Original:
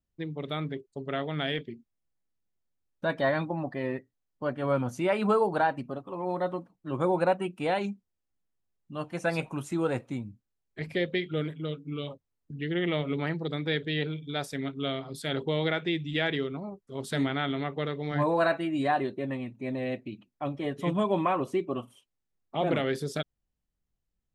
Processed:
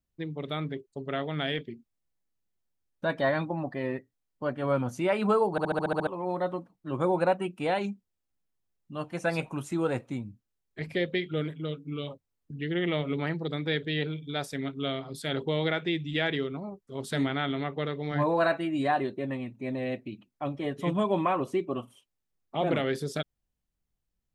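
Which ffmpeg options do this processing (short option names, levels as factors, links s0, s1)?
-filter_complex "[0:a]asettb=1/sr,asplit=3[s0][s1][s2];[s0]atrim=end=17.714[s3];[s1]atrim=start=17.71:end=18.44,asetpts=PTS-STARTPTS,afade=t=in:d=0.004:c=qsin,afade=t=out:st=0.726:d=0.004:c=qsin,equalizer=f=8300:w=4.5:g=-9[s4];[s2]atrim=start=18.436[s5];[s3][s4]acrossfade=d=0.004:c1=hsin:c2=qsin[s6];[s6][s5]acrossfade=d=0.004:c1=qsin:c2=hsin,asplit=9[s7][s8][s9][s10][s11][s12][s13][s14][s15];[s7]atrim=end=5.582[s16];[s8]atrim=start=5.508:end=5.582[s17];[s9]atrim=start=5.508:end=5.582[s18];[s10]atrim=start=5.508:end=5.582[s19];[s11]atrim=start=5.508:end=5.582[s20];[s12]atrim=start=5.508:end=5.582[s21];[s13]atrim=start=5.508:end=5.582[s22];[s14]atrim=start=5.508:end=5.582[s23];[s15]atrim=start=6.068[s24];[s16][s17]acrossfade=d=0.004:c1=hsin:c2=hsin[s25];[s25][s18]acrossfade=d=0.004:c1=hsin:c2=hsin[s26];[s26][s19]acrossfade=d=0.004:c1=hsin:c2=hsin[s27];[s27][s20]acrossfade=d=0.004:c1=hsin:c2=hsin[s28];[s28][s21]acrossfade=d=0.004:c1=hsin:c2=hsin[s29];[s29][s22]acrossfade=d=0.004:c1=hsin:c2=hsin[s30];[s30][s23]acrossfade=d=0.004:c1=hsin:c2=hsin[s31];[s31][s24]acrossfade=d=0.004:c1=hsin:c2=hsin"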